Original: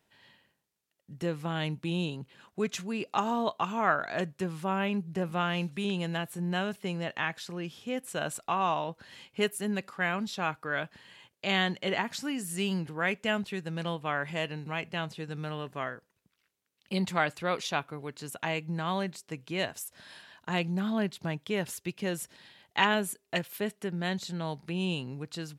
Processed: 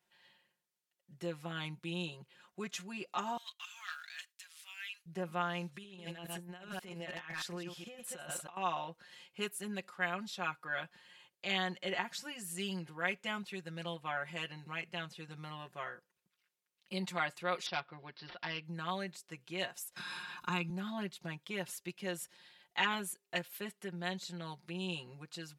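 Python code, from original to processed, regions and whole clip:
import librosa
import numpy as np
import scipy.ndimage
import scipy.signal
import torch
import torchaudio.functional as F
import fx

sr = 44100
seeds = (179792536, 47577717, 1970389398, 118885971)

y = fx.chain(x, sr, fx.leveller(passes=1),
    fx.bessel_highpass(hz=2900.0, order=4), at=(3.37, 5.06))
y = fx.chain(y, sr, fx.reverse_delay(ms=105, wet_db=-7.5),
    fx.over_compress(threshold_db=-36.0, ratio=-0.5),
    fx.clip_hard(threshold_db=-27.5), at=(5.74, 8.57))
y = fx.chain(y, sr, fx.self_delay(depth_ms=0.1),
    fx.resample_bad(factor=4, down='none', up='filtered'), at=(17.66, 18.65))
y = fx.chain(y, sr, fx.highpass(hz=40.0, slope=12),
    fx.comb(ms=0.8, depth=0.77),
    fx.band_squash(depth_pct=70), at=(19.96, 20.7))
y = fx.low_shelf(y, sr, hz=420.0, db=-9.0)
y = y + 0.9 * np.pad(y, (int(5.6 * sr / 1000.0), 0))[:len(y)]
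y = y * librosa.db_to_amplitude(-7.5)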